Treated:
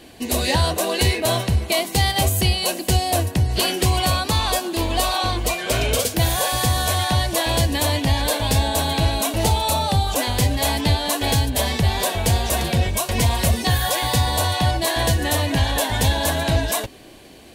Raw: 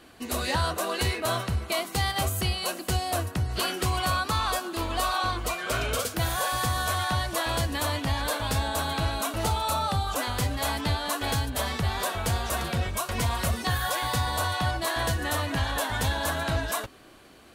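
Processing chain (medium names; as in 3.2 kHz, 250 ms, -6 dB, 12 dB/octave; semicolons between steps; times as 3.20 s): peaking EQ 1.3 kHz -14 dB 0.52 oct; trim +9 dB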